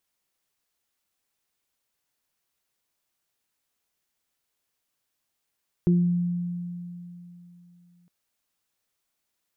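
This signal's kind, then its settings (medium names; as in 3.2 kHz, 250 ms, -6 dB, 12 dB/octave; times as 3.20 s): additive tone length 2.21 s, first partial 175 Hz, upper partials -6 dB, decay 3.16 s, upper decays 0.42 s, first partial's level -16 dB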